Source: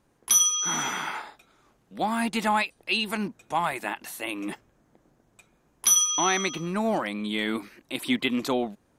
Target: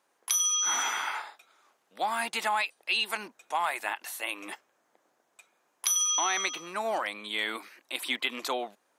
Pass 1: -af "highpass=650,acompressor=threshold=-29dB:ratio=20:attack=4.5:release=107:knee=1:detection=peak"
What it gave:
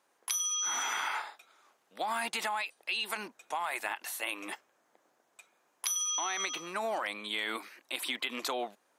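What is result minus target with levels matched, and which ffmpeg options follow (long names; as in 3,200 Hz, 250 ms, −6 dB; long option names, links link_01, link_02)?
downward compressor: peak gain reduction +6 dB
-af "highpass=650,acompressor=threshold=-22.5dB:ratio=20:attack=4.5:release=107:knee=1:detection=peak"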